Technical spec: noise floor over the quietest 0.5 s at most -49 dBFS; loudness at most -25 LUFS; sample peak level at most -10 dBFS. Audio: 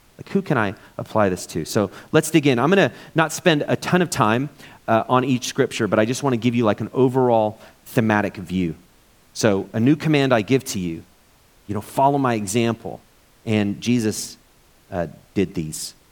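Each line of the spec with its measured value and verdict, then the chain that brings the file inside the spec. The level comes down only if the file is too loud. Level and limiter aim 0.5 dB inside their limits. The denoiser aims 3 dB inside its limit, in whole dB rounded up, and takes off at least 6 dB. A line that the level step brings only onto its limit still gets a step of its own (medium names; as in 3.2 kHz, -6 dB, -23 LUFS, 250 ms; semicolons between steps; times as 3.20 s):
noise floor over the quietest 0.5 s -55 dBFS: pass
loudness -20.5 LUFS: fail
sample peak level -1.5 dBFS: fail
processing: trim -5 dB; peak limiter -10.5 dBFS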